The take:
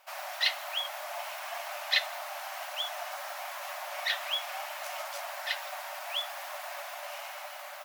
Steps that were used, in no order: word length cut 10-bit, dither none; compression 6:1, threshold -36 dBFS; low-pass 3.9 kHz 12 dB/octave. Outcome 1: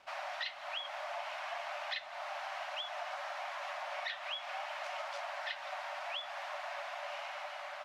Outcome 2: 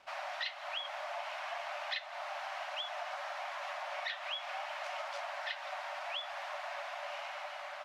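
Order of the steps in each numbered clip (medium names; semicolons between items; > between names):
compression > word length cut > low-pass; word length cut > low-pass > compression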